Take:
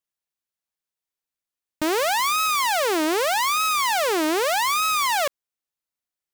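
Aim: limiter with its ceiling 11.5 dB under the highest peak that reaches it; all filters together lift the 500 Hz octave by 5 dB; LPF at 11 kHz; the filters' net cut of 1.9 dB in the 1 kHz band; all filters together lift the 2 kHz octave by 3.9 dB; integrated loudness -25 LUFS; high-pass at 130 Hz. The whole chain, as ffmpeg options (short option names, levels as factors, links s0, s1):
-af "highpass=130,lowpass=11000,equalizer=f=500:t=o:g=8,equalizer=f=1000:t=o:g=-6.5,equalizer=f=2000:t=o:g=6,volume=1.33,alimiter=limit=0.112:level=0:latency=1"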